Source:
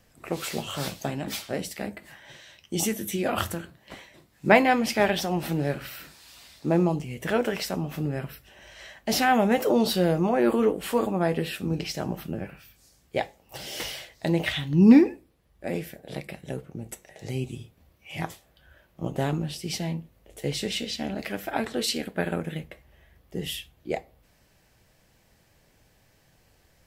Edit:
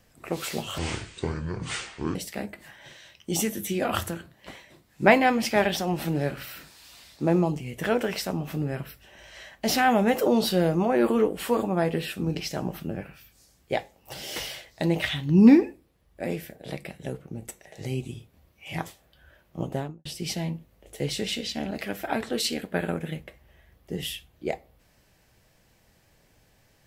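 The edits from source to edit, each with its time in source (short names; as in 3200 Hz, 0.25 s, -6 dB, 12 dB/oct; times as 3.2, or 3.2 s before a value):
0.78–1.59 speed 59%
19.06–19.49 studio fade out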